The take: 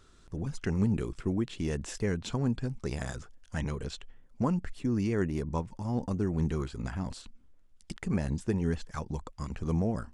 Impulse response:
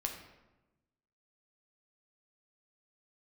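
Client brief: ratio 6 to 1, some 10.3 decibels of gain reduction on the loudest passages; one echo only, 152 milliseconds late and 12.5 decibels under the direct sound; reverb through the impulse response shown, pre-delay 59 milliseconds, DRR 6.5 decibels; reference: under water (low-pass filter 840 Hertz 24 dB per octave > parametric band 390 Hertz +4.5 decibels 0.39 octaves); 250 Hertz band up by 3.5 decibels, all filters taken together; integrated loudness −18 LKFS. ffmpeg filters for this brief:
-filter_complex "[0:a]equalizer=frequency=250:width_type=o:gain=4,acompressor=threshold=-33dB:ratio=6,aecho=1:1:152:0.237,asplit=2[link_01][link_02];[1:a]atrim=start_sample=2205,adelay=59[link_03];[link_02][link_03]afir=irnorm=-1:irlink=0,volume=-7.5dB[link_04];[link_01][link_04]amix=inputs=2:normalize=0,lowpass=frequency=840:width=0.5412,lowpass=frequency=840:width=1.3066,equalizer=frequency=390:width_type=o:width=0.39:gain=4.5,volume=19dB"

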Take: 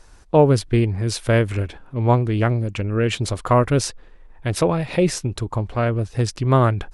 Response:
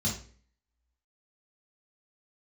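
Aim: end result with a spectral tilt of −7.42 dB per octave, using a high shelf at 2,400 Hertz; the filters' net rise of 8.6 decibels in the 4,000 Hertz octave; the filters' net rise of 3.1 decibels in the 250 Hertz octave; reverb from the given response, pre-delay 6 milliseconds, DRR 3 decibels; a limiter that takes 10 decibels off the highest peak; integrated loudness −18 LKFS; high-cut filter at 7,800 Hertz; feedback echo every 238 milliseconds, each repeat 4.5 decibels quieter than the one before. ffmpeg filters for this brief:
-filter_complex "[0:a]lowpass=7800,equalizer=frequency=250:width_type=o:gain=4,highshelf=frequency=2400:gain=8,equalizer=frequency=4000:width_type=o:gain=4,alimiter=limit=-10.5dB:level=0:latency=1,aecho=1:1:238|476|714|952|1190|1428|1666|1904|2142:0.596|0.357|0.214|0.129|0.0772|0.0463|0.0278|0.0167|0.01,asplit=2[link_01][link_02];[1:a]atrim=start_sample=2205,adelay=6[link_03];[link_02][link_03]afir=irnorm=-1:irlink=0,volume=-8.5dB[link_04];[link_01][link_04]amix=inputs=2:normalize=0,volume=-7.5dB"

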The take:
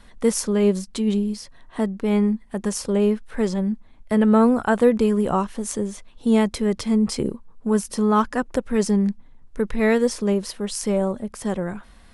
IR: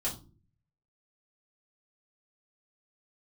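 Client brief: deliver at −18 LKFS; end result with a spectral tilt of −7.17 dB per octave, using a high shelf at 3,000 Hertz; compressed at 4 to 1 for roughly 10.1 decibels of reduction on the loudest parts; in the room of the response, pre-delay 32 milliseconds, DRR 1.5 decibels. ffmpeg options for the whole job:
-filter_complex "[0:a]highshelf=frequency=3000:gain=-8,acompressor=threshold=-24dB:ratio=4,asplit=2[link_01][link_02];[1:a]atrim=start_sample=2205,adelay=32[link_03];[link_02][link_03]afir=irnorm=-1:irlink=0,volume=-5.5dB[link_04];[link_01][link_04]amix=inputs=2:normalize=0,volume=7dB"

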